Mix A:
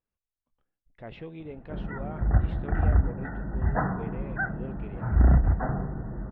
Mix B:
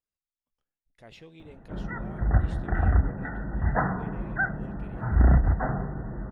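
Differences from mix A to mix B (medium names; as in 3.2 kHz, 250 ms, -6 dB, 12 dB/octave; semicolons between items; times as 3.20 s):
speech -9.5 dB; master: remove distance through air 490 m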